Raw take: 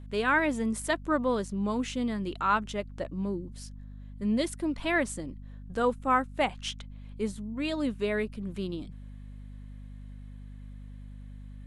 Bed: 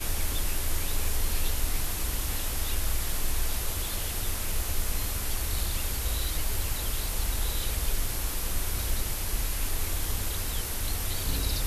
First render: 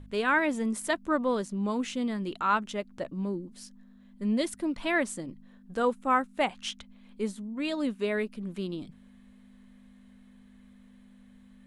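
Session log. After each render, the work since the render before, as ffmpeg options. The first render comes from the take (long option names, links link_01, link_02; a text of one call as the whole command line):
ffmpeg -i in.wav -af "bandreject=frequency=50:width_type=h:width=4,bandreject=frequency=100:width_type=h:width=4,bandreject=frequency=150:width_type=h:width=4" out.wav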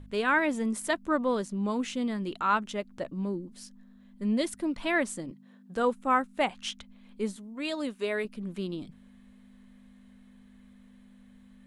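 ffmpeg -i in.wav -filter_complex "[0:a]asettb=1/sr,asplit=3[link_01][link_02][link_03];[link_01]atrim=end=5.314[link_04];[link_02]atrim=start=5.31:end=5.76,asetpts=PTS-STARTPTS,afade=type=in:duration=0.004:curve=qsin,afade=type=out:start_time=0.446:duration=0.004:curve=qsin,highpass=frequency=140:width=0.5412,highpass=frequency=140:width=1.3066[link_05];[link_03]atrim=start=5.756[link_06];[link_04][link_05]acrossfade=duration=0.004:curve1=hsin:curve2=qsin[link_07];[link_07][link_06]acrossfade=duration=0.004:curve1=qsin:curve2=hsin,asettb=1/sr,asplit=3[link_08][link_09][link_10];[link_08]atrim=end=7.364[link_11];[link_09]atrim=start=7.36:end=8.25,asetpts=PTS-STARTPTS,afade=type=in:duration=0.004:curve=qsin,afade=type=out:start_time=0.886:duration=0.004:curve=qsin,bass=frequency=250:gain=-10,treble=frequency=4000:gain=3[link_12];[link_10]atrim=start=8.246[link_13];[link_11][link_12]acrossfade=duration=0.004:curve1=hsin:curve2=qsin[link_14];[link_14][link_13]acrossfade=duration=0.004:curve1=qsin:curve2=hsin" out.wav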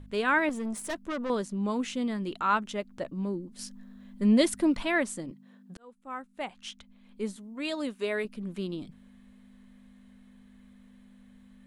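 ffmpeg -i in.wav -filter_complex "[0:a]asettb=1/sr,asplit=3[link_01][link_02][link_03];[link_01]atrim=end=0.494[link_04];[link_02]atrim=start=0.49:end=1.3,asetpts=PTS-STARTPTS,afade=type=in:duration=0.004:curve=qsin,afade=type=out:start_time=0.806:duration=0.004:curve=qsin,aeval=exprs='(tanh(28.2*val(0)+0.3)-tanh(0.3))/28.2':channel_layout=same[link_05];[link_03]atrim=start=1.296[link_06];[link_04][link_05]acrossfade=duration=0.004:curve1=hsin:curve2=qsin[link_07];[link_07][link_06]acrossfade=duration=0.004:curve1=qsin:curve2=hsin,asplit=4[link_08][link_09][link_10][link_11];[link_08]atrim=end=3.592[link_12];[link_09]atrim=start=3.588:end=4.832,asetpts=PTS-STARTPTS,volume=6dB[link_13];[link_10]atrim=start=4.828:end=5.77,asetpts=PTS-STARTPTS,afade=type=out:start_time=0.938:duration=0.004:curve=hsin[link_14];[link_11]atrim=start=5.77,asetpts=PTS-STARTPTS,afade=type=in:duration=1.82[link_15];[link_12][link_13]acrossfade=duration=0.004:curve1=hsin:curve2=hsin[link_16];[link_14][link_15]concat=n=2:v=0:a=1[link_17];[link_16][link_17]acrossfade=duration=0.004:curve1=hsin:curve2=hsin" out.wav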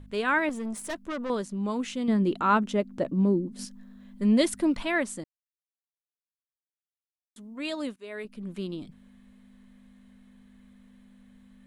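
ffmpeg -i in.wav -filter_complex "[0:a]asettb=1/sr,asplit=3[link_01][link_02][link_03];[link_01]atrim=end=2.084[link_04];[link_02]atrim=start=2.08:end=3.65,asetpts=PTS-STARTPTS,afade=type=in:duration=0.004:curve=qsin,afade=type=out:start_time=1.566:duration=0.004:curve=qsin,equalizer=frequency=260:width=0.43:gain=10[link_05];[link_03]atrim=start=3.646[link_06];[link_04][link_05]acrossfade=duration=0.004:curve1=hsin:curve2=qsin[link_07];[link_07][link_06]acrossfade=duration=0.004:curve1=qsin:curve2=hsin,asplit=4[link_08][link_09][link_10][link_11];[link_08]atrim=end=5.24,asetpts=PTS-STARTPTS,afade=type=out:start_time=5.236:duration=0.004:curve=hsin[link_12];[link_09]atrim=start=5.24:end=7.36,asetpts=PTS-STARTPTS,volume=0[link_13];[link_10]atrim=start=7.36:end=7.96,asetpts=PTS-STARTPTS,afade=type=in:duration=0.004:curve=hsin,afade=type=out:start_time=0.596:duration=0.004:curve=hsin:silence=0.112202[link_14];[link_11]atrim=start=7.96,asetpts=PTS-STARTPTS,afade=type=in:duration=0.54:silence=0.112202[link_15];[link_12][link_13][link_14][link_15]concat=n=4:v=0:a=1" out.wav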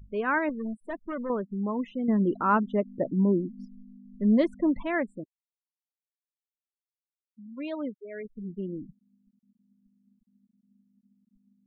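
ffmpeg -i in.wav -af "afftfilt=real='re*gte(hypot(re,im),0.0224)':imag='im*gte(hypot(re,im),0.0224)':win_size=1024:overlap=0.75,lowpass=1700" out.wav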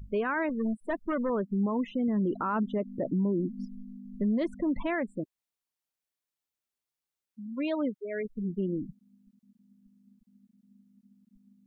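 ffmpeg -i in.wav -filter_complex "[0:a]asplit=2[link_01][link_02];[link_02]acompressor=threshold=-33dB:ratio=6,volume=-2dB[link_03];[link_01][link_03]amix=inputs=2:normalize=0,alimiter=limit=-22dB:level=0:latency=1:release=37" out.wav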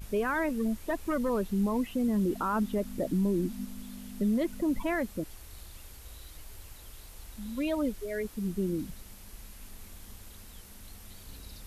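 ffmpeg -i in.wav -i bed.wav -filter_complex "[1:a]volume=-18dB[link_01];[0:a][link_01]amix=inputs=2:normalize=0" out.wav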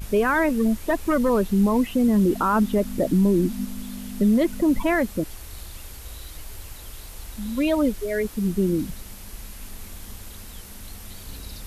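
ffmpeg -i in.wav -af "volume=9dB" out.wav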